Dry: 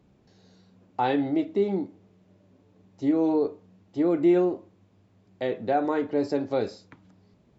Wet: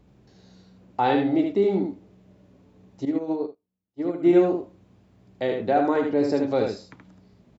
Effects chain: hum 60 Hz, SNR 35 dB; delay 76 ms -4.5 dB; 3.05–4.33 s: upward expansion 2.5:1, over -39 dBFS; trim +2.5 dB

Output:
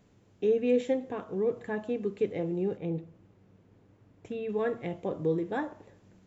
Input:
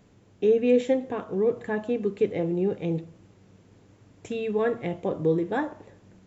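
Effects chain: 2.77–4.49 s: low-pass 2 kHz 6 dB/octave; trim -5 dB

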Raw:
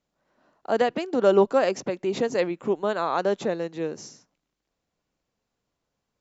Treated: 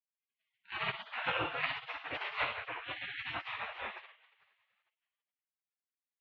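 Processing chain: two-slope reverb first 0.64 s, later 2.3 s, from -21 dB, DRR -5.5 dB; spectral gate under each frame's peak -30 dB weak; mistuned SSB -180 Hz 300–3100 Hz; trim +4.5 dB

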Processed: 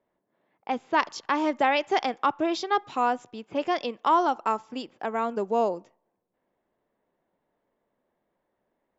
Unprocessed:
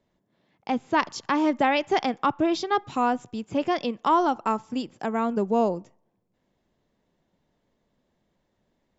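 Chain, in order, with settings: level-controlled noise filter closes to 1.8 kHz, open at -20 dBFS; tone controls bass -14 dB, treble -1 dB

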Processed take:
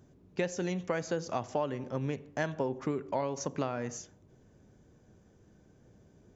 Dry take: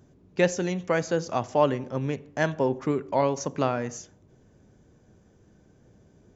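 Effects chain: compression 6:1, threshold -25 dBFS, peak gain reduction 10 dB; trim -3 dB

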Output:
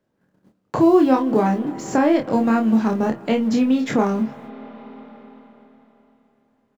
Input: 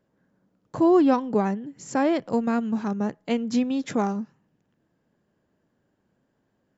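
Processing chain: companding laws mixed up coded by mu; hum notches 60/120/180 Hz; gate -55 dBFS, range -28 dB; treble shelf 5.1 kHz -8 dB; in parallel at -1 dB: peak limiter -18.5 dBFS, peak gain reduction 8.5 dB; on the sum: early reflections 27 ms -3.5 dB, 50 ms -15.5 dB; on a send at -19.5 dB: reverberation RT60 3.5 s, pre-delay 188 ms; on the sum: three bands compressed up and down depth 40%

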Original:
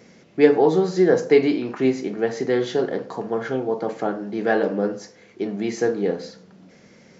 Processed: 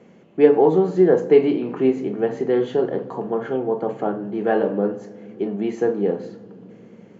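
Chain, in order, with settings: tilt EQ -2 dB/octave; reverberation RT60 3.5 s, pre-delay 3 ms, DRR 16.5 dB; trim -8.5 dB

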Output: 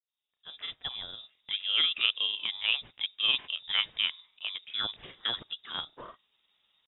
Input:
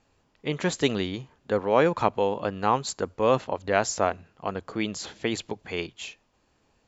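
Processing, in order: fade-in on the opening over 2.03 s; granulator, spray 21 ms, pitch spread up and down by 0 st; frequency inversion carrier 3.7 kHz; trim -4 dB

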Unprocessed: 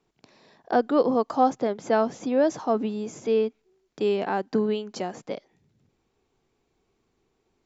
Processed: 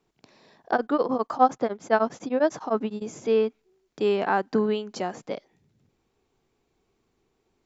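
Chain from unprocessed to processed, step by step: dynamic bell 1.3 kHz, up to +7 dB, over -38 dBFS, Q 0.97; 0.73–3.02 s: tremolo of two beating tones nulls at 9.9 Hz

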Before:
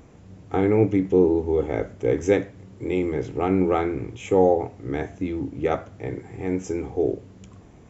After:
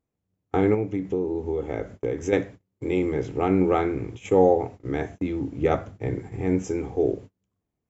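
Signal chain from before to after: 5.61–6.65 s: bass shelf 230 Hz +6 dB; gate -37 dBFS, range -34 dB; 0.74–2.33 s: compression 4:1, threshold -24 dBFS, peak gain reduction 10 dB

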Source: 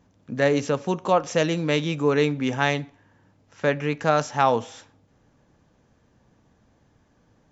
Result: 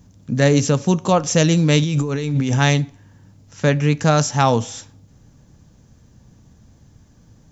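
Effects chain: tone controls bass +13 dB, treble +14 dB; 1.82–2.59 s: compressor with a negative ratio -22 dBFS, ratio -1; trim +2 dB

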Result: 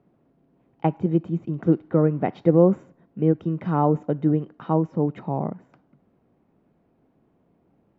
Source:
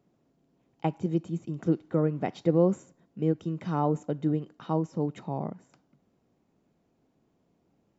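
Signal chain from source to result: low-pass 2.1 kHz 12 dB/octave; trim +6.5 dB

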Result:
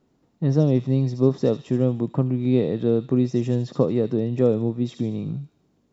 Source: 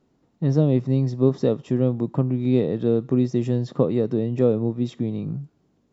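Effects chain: feedback echo behind a high-pass 75 ms, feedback 52%, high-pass 3.3 kHz, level -4.5 dB

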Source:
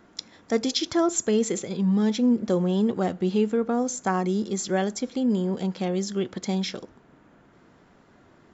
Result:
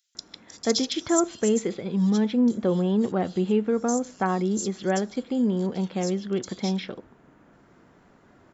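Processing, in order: 0.64–1.10 s: treble shelf 6 kHz +7.5 dB; bands offset in time highs, lows 150 ms, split 3.8 kHz

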